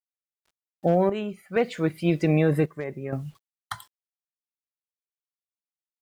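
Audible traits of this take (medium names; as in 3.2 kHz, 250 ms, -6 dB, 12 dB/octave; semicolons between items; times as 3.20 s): a quantiser's noise floor 10-bit, dither none; chopped level 0.64 Hz, depth 65%, duty 70%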